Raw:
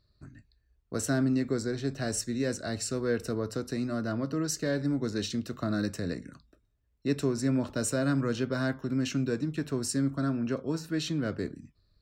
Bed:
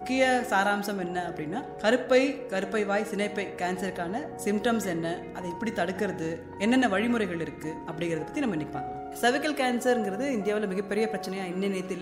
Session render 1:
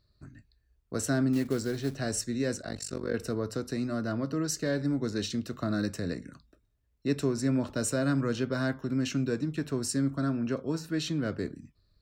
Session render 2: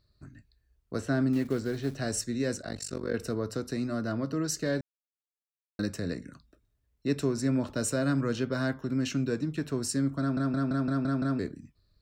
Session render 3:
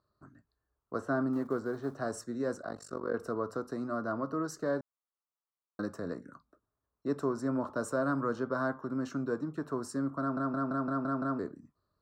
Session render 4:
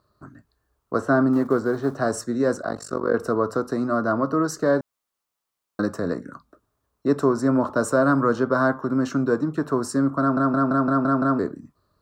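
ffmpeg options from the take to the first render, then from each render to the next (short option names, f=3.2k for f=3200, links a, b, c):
-filter_complex "[0:a]asettb=1/sr,asplit=3[a][b][c];[a]atrim=end=1.334[d];[b]atrim=start=1.33:end=1.96,asetpts=PTS-STARTPTS,afade=t=in:d=0.004:c=qsin,afade=t=out:st=0.626:d=0.004:c=qsin,acrusher=bits=5:mode=log:mix=0:aa=0.000001[e];[c]atrim=start=1.956[f];[d][e]acrossfade=d=0.004:c1=hsin:c2=qsin[g];[g][f]acrossfade=d=0.004:c1=qsin:c2=hsin,asettb=1/sr,asplit=3[h][i][j];[h]atrim=end=2.624[k];[i]atrim=start=2.62:end=3.14,asetpts=PTS-STARTPTS,afade=t=in:d=0.004:c=qsin,afade=t=out:st=0.516:d=0.004:c=qsin,tremolo=f=48:d=0.974[l];[j]atrim=start=3.136[m];[k][l]acrossfade=d=0.004:c1=hsin:c2=qsin[n];[n][m]acrossfade=d=0.004:c1=qsin:c2=hsin"
-filter_complex "[0:a]asettb=1/sr,asplit=3[a][b][c];[a]atrim=end=0.994[d];[b]atrim=start=0.99:end=1.9,asetpts=PTS-STARTPTS,afade=t=in:d=0.004:c=qsin,afade=t=out:st=0.906:d=0.004:c=qsin,acrossover=split=3600[e][f];[f]acompressor=threshold=-50dB:ratio=4:attack=1:release=60[g];[e][g]amix=inputs=2:normalize=0[h];[c]atrim=start=1.896[i];[d][h]acrossfade=d=0.004:c1=hsin:c2=qsin[j];[j][i]acrossfade=d=0.004:c1=qsin:c2=hsin,asplit=10[k][l][m][n][o][p][q][r][s][t];[k]atrim=end=4.81,asetpts=PTS-STARTPTS,afade=t=out:st=4.806:d=0.004:c=hsin[u];[l]atrim=start=4.81:end=5.79,asetpts=PTS-STARTPTS,volume=0[v];[m]atrim=start=5.79:end=10.372,asetpts=PTS-STARTPTS,afade=t=in:d=0.004:c=hsin[w];[n]atrim=start=10.198:end=10.372[x];[o]atrim=start=10.198:end=10.372[y];[p]atrim=start=10.198:end=10.372[z];[q]atrim=start=10.198:end=10.372[aa];[r]atrim=start=10.198:end=10.372[ab];[s]atrim=start=10.198:end=10.372[ac];[t]atrim=start=11.388[ad];[u][v][w]concat=n=3:v=0:a=1[ae];[ae][x]acrossfade=d=0.004:c1=hsin:c2=hsin[af];[af][y]acrossfade=d=0.004:c1=hsin:c2=hsin[ag];[ag][z]acrossfade=d=0.004:c1=hsin:c2=hsin[ah];[ah][aa]acrossfade=d=0.004:c1=hsin:c2=hsin[ai];[ai][ab]acrossfade=d=0.004:c1=hsin:c2=hsin[aj];[aj][ac]acrossfade=d=0.004:c1=hsin:c2=hsin[ak];[ak][ad]acrossfade=d=0.004:c1=hsin:c2=hsin"
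-af "highpass=f=390:p=1,highshelf=f=1.7k:t=q:w=3:g=-12.5"
-af "volume=12dB"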